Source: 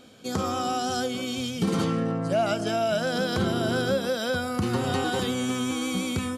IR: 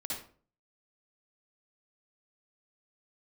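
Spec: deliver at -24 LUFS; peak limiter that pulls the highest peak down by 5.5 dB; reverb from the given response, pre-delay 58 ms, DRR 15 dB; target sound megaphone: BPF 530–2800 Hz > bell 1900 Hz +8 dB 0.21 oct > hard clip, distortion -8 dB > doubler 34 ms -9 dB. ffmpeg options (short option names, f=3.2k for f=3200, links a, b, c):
-filter_complex "[0:a]alimiter=limit=-19.5dB:level=0:latency=1,asplit=2[a][b];[1:a]atrim=start_sample=2205,adelay=58[c];[b][c]afir=irnorm=-1:irlink=0,volume=-16.5dB[d];[a][d]amix=inputs=2:normalize=0,highpass=530,lowpass=2.8k,equalizer=f=1.9k:t=o:w=0.21:g=8,asoftclip=type=hard:threshold=-34dB,asplit=2[e][f];[f]adelay=34,volume=-9dB[g];[e][g]amix=inputs=2:normalize=0,volume=11.5dB"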